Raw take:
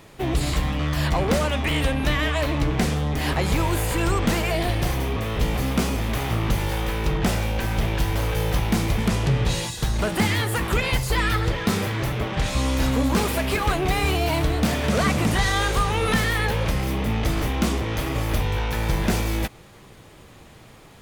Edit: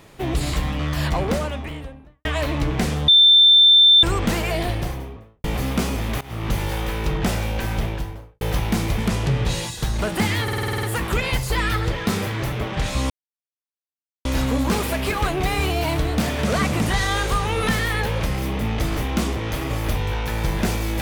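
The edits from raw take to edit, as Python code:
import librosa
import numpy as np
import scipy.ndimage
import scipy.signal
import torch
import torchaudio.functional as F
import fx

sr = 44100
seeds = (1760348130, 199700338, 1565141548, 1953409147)

y = fx.studio_fade_out(x, sr, start_s=1.05, length_s=1.2)
y = fx.studio_fade_out(y, sr, start_s=4.57, length_s=0.87)
y = fx.studio_fade_out(y, sr, start_s=7.69, length_s=0.72)
y = fx.edit(y, sr, fx.bleep(start_s=3.08, length_s=0.95, hz=3560.0, db=-8.5),
    fx.fade_in_from(start_s=6.21, length_s=0.33, floor_db=-20.0),
    fx.stutter(start_s=10.43, slice_s=0.05, count=9),
    fx.insert_silence(at_s=12.7, length_s=1.15), tone=tone)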